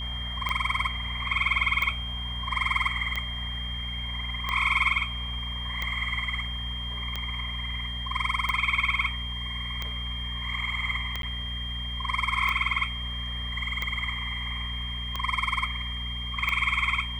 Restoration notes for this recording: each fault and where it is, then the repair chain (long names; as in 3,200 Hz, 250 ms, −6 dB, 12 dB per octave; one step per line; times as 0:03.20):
mains hum 60 Hz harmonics 4 −35 dBFS
scratch tick 45 rpm −15 dBFS
whistle 3,200 Hz −34 dBFS
0:11.22–0:11.23: drop-out 12 ms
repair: click removal
hum removal 60 Hz, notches 4
notch filter 3,200 Hz, Q 30
repair the gap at 0:11.22, 12 ms